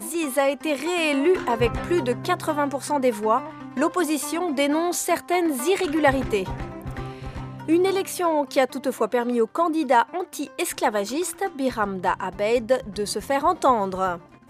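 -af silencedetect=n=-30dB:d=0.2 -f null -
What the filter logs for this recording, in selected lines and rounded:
silence_start: 14.17
silence_end: 14.50 | silence_duration: 0.33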